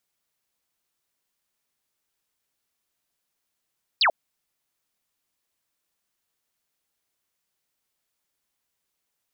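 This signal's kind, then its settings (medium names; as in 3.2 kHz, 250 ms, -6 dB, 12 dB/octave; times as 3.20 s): laser zap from 5.2 kHz, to 560 Hz, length 0.09 s sine, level -16 dB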